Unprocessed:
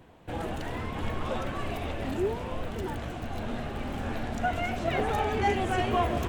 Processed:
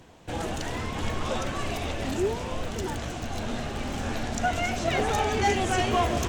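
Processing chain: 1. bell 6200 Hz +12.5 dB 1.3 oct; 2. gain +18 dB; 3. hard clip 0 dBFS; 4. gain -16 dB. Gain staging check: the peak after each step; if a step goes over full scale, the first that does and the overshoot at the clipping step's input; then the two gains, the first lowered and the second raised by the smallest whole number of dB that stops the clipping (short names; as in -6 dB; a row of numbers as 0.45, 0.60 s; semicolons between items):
-13.5, +4.5, 0.0, -16.0 dBFS; step 2, 4.5 dB; step 2 +13 dB, step 4 -11 dB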